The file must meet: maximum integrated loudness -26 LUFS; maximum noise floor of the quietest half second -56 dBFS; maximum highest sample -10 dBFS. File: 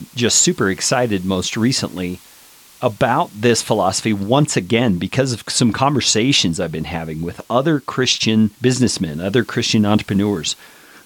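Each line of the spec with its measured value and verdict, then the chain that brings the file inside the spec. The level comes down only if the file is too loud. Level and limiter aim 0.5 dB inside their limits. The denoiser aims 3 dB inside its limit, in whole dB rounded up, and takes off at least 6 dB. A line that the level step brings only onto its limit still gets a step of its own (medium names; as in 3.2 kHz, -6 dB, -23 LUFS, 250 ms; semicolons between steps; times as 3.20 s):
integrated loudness -17.0 LUFS: fail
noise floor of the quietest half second -45 dBFS: fail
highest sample -2.0 dBFS: fail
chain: noise reduction 6 dB, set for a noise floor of -45 dBFS; trim -9.5 dB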